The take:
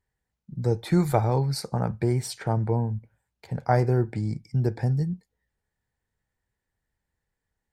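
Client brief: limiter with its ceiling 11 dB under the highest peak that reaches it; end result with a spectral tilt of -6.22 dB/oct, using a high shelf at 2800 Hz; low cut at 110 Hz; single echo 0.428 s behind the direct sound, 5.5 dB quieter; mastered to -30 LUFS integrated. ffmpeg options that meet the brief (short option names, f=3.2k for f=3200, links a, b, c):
-af "highpass=110,highshelf=f=2.8k:g=3,alimiter=limit=-18dB:level=0:latency=1,aecho=1:1:428:0.531,volume=-1dB"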